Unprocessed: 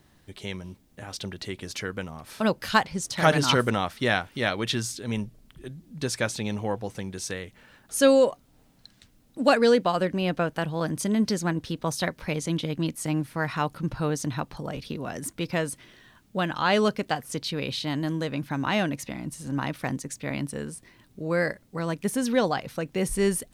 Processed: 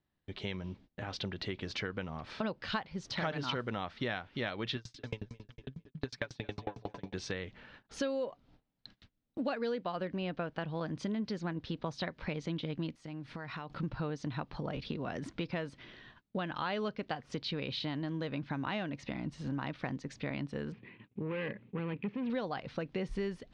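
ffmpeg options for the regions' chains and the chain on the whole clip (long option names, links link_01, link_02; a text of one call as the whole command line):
ffmpeg -i in.wav -filter_complex "[0:a]asettb=1/sr,asplit=3[link_01][link_02][link_03];[link_01]atrim=end=4.764[link_04];[link_02]atrim=start=4.76:end=7.14,asetpts=PTS-STARTPTS,afade=type=in:duration=0.004:curve=qsin,afade=type=out:start_time=2.376:duration=0.004:curve=qsin,aecho=1:1:7:0.66,atrim=end_sample=104958,aecho=1:1:225|450|675|900:0.251|0.1|0.0402|0.0161,atrim=end_sample=104958,aeval=exprs='val(0)*pow(10,-35*if(lt(mod(11*n/s,1),2*abs(11)/1000),1-mod(11*n/s,1)/(2*abs(11)/1000),(mod(11*n/s,1)-2*abs(11)/1000)/(1-2*abs(11)/1000))/20)':channel_layout=same[link_05];[link_03]atrim=start=7.136[link_06];[link_04][link_05]acrossfade=duration=0.004:curve1=hsin:curve2=qsin[link_07];[link_07][link_06]acrossfade=duration=0.004:curve1=qsin:curve2=hsin,asettb=1/sr,asplit=3[link_08][link_09][link_10];[link_08]atrim=end=12.954[link_11];[link_09]atrim=start=12.95:end=13.7,asetpts=PTS-STARTPTS,afade=type=in:duration=0.004:curve=qsin,afade=type=out:start_time=0.746:duration=0.004:curve=qsin,highshelf=frequency=6200:gain=6.5,acompressor=threshold=-38dB:ratio=12:attack=3.2:release=140:knee=1:detection=peak[link_12];[link_10]atrim=start=13.696[link_13];[link_11][link_12]acrossfade=duration=0.004:curve1=hsin:curve2=qsin[link_14];[link_14][link_13]acrossfade=duration=0.004:curve1=qsin:curve2=hsin,asettb=1/sr,asplit=3[link_15][link_16][link_17];[link_15]atrim=end=20.724[link_18];[link_16]atrim=start=20.72:end=22.3,asetpts=PTS-STARTPTS,afade=type=in:duration=0.004:curve=qsin,afade=type=out:start_time=1.576:duration=0.004:curve=qsin,aeval=exprs='(tanh(31.6*val(0)+0.25)-tanh(0.25))/31.6':channel_layout=same,highpass=110,equalizer=frequency=120:width_type=q:width=4:gain=8,equalizer=frequency=210:width_type=q:width=4:gain=8,equalizer=frequency=430:width_type=q:width=4:gain=6,equalizer=frequency=660:width_type=q:width=4:gain=-8,equalizer=frequency=1400:width_type=q:width=4:gain=-5,equalizer=frequency=2500:width_type=q:width=4:gain=8,lowpass=frequency=3000:width=0.5412,lowpass=frequency=3000:width=1.3066[link_19];[link_17]atrim=start=22.296[link_20];[link_18][link_19]acrossfade=duration=0.004:curve1=hsin:curve2=qsin[link_21];[link_21][link_20]acrossfade=duration=0.004:curve1=qsin:curve2=hsin,agate=range=-24dB:threshold=-54dB:ratio=16:detection=peak,lowpass=frequency=4400:width=0.5412,lowpass=frequency=4400:width=1.3066,acompressor=threshold=-34dB:ratio=5" out.wav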